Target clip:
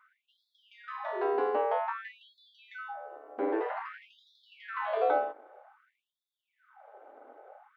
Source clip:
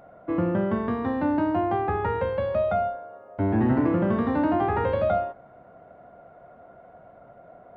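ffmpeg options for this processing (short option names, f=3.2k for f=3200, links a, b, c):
-af "aeval=exprs='val(0)*sin(2*PI*110*n/s)':c=same,afftfilt=real='re*gte(b*sr/1024,230*pow(3400/230,0.5+0.5*sin(2*PI*0.52*pts/sr)))':imag='im*gte(b*sr/1024,230*pow(3400/230,0.5+0.5*sin(2*PI*0.52*pts/sr)))':win_size=1024:overlap=0.75"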